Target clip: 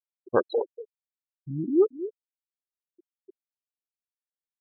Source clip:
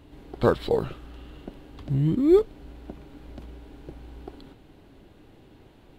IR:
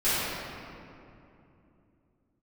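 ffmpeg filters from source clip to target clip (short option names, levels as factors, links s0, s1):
-filter_complex "[0:a]bass=f=250:g=-12,treble=f=4000:g=12,asplit=2[s0][s1];[s1]aecho=0:1:305:0.211[s2];[s0][s2]amix=inputs=2:normalize=0,atempo=1.3,afftfilt=real='re*gte(hypot(re,im),0.1)':imag='im*gte(hypot(re,im),0.1)':win_size=1024:overlap=0.75"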